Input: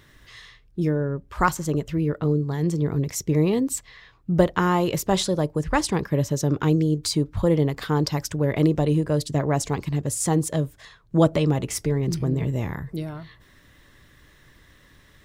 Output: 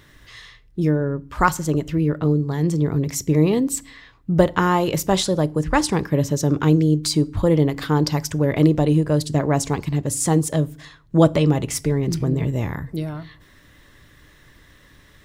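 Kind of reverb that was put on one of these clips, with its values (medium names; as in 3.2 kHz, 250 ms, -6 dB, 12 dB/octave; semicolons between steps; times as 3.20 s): FDN reverb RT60 0.44 s, low-frequency decay 1.6×, high-frequency decay 0.9×, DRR 18.5 dB; trim +3 dB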